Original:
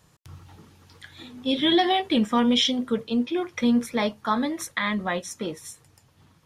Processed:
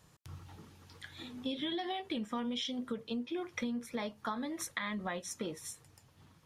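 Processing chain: compressor 10:1, threshold -30 dBFS, peak gain reduction 14.5 dB; gain -4 dB

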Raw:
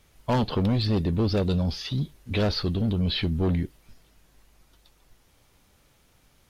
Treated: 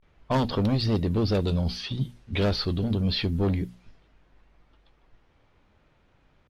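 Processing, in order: vibrato 0.37 Hz 97 cents; notches 60/120/180/240 Hz; low-pass opened by the level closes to 2300 Hz, open at -23.5 dBFS

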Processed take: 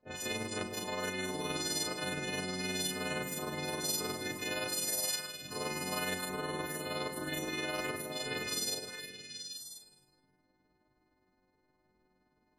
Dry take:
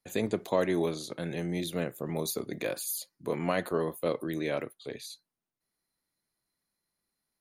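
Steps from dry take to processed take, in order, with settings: frequency quantiser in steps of 3 st; LPF 6300 Hz 12 dB/oct; reverse; compressor 12:1, threshold -36 dBFS, peak gain reduction 15 dB; reverse; high shelf 3000 Hz +8 dB; low-pass opened by the level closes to 640 Hz, open at -39.5 dBFS; delay with a stepping band-pass 0.121 s, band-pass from 220 Hz, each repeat 1.4 oct, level -4.5 dB; on a send at -17.5 dB: reverb RT60 0.95 s, pre-delay 47 ms; on the sum: granular stretch 1.7×, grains 0.104 s; spectral compressor 2:1

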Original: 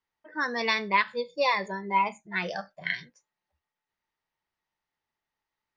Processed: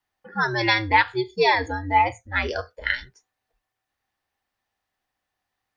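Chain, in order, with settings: frequency shift -110 Hz; gain +6 dB

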